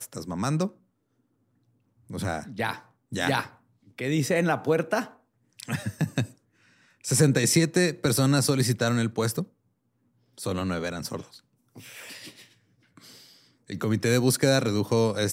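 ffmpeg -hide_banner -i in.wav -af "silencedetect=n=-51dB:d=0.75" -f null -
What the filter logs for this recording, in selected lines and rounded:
silence_start: 0.75
silence_end: 2.09 | silence_duration: 1.33
silence_start: 9.48
silence_end: 10.38 | silence_duration: 0.89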